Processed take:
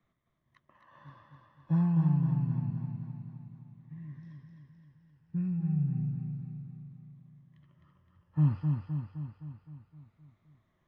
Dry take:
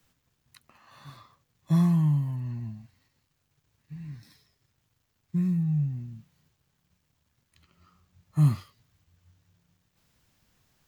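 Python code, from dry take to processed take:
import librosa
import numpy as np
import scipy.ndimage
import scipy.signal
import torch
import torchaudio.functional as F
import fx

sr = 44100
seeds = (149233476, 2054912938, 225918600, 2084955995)

y = fx.spec_ripple(x, sr, per_octave=1.2, drift_hz=-0.29, depth_db=11)
y = scipy.signal.sosfilt(scipy.signal.butter(2, 1800.0, 'lowpass', fs=sr, output='sos'), y)
y = fx.echo_feedback(y, sr, ms=259, feedback_pct=58, wet_db=-4.5)
y = y * librosa.db_to_amplitude(-5.0)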